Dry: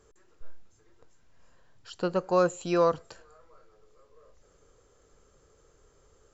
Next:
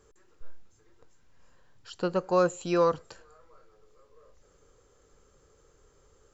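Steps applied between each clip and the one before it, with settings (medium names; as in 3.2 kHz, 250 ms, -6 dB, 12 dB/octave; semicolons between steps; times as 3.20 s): band-stop 660 Hz, Q 12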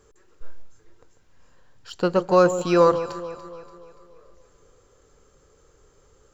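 in parallel at -6.5 dB: crossover distortion -44 dBFS; on the sum: echo whose repeats swap between lows and highs 144 ms, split 1 kHz, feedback 67%, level -10.5 dB; trim +4 dB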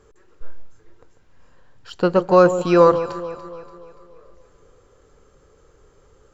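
treble shelf 5.4 kHz -11 dB; trim +4 dB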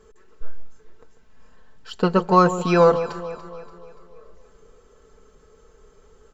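comb 4.6 ms, depth 66%; trim -1 dB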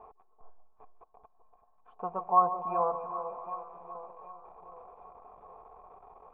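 jump at every zero crossing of -30.5 dBFS; cascade formant filter a; echo whose repeats swap between lows and highs 384 ms, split 1.1 kHz, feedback 67%, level -10 dB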